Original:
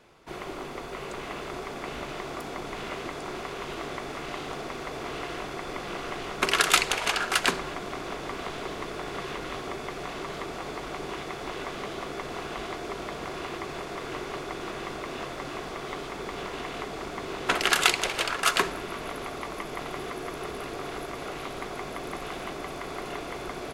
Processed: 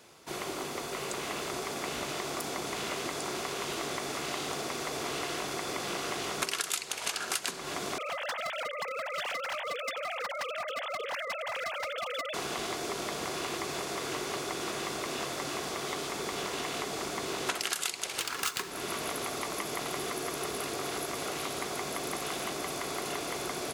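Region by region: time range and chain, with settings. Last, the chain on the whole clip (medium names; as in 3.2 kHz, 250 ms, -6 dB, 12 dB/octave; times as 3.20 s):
7.98–12.34 s: formants replaced by sine waves + tilt shelf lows -5.5 dB, about 840 Hz + overload inside the chain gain 30.5 dB
18.19–18.71 s: peaking EQ 590 Hz -6.5 dB 0.31 oct + band-stop 670 Hz, Q 16 + sliding maximum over 3 samples
whole clip: high-pass 83 Hz 12 dB/octave; tone controls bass -1 dB, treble +12 dB; compression 10:1, threshold -29 dBFS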